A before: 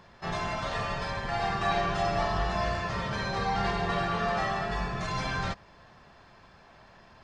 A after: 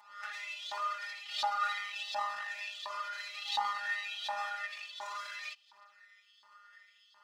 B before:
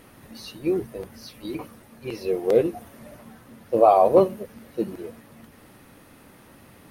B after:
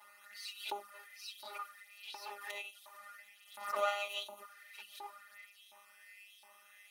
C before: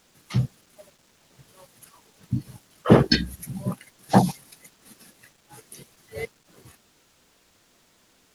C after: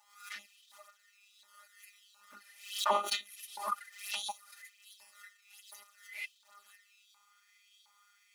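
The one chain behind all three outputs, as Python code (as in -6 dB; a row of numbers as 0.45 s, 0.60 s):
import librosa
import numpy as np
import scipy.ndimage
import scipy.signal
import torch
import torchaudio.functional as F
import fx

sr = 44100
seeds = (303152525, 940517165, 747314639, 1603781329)

y = np.where(x < 0.0, 10.0 ** (-12.0 / 20.0) * x, x)
y = fx.robotise(y, sr, hz=203.0)
y = fx.env_flanger(y, sr, rest_ms=6.0, full_db=-23.0)
y = fx.dynamic_eq(y, sr, hz=1900.0, q=1.5, threshold_db=-54.0, ratio=4.0, max_db=-4)
y = fx.filter_lfo_highpass(y, sr, shape='saw_up', hz=1.4, low_hz=880.0, high_hz=3800.0, q=5.3)
y = scipy.signal.sosfilt(scipy.signal.butter(2, 94.0, 'highpass', fs=sr, output='sos'), y)
y = y + 0.93 * np.pad(y, (int(3.4 * sr / 1000.0), 0))[:len(y)]
y = fx.pre_swell(y, sr, db_per_s=100.0)
y = y * 10.0 ** (-3.0 / 20.0)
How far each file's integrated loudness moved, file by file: -7.0 LU, -20.5 LU, -13.0 LU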